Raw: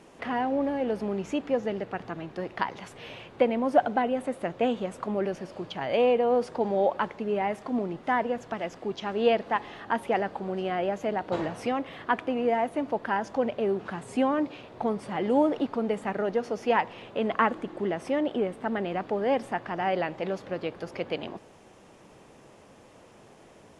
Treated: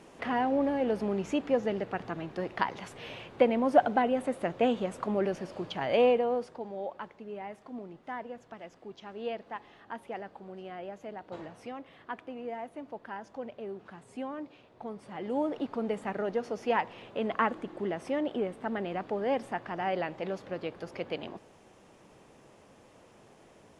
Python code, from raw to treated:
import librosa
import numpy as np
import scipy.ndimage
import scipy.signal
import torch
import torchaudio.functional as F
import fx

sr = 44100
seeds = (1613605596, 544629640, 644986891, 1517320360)

y = fx.gain(x, sr, db=fx.line((6.06, -0.5), (6.65, -13.0), (14.8, -13.0), (15.83, -4.0)))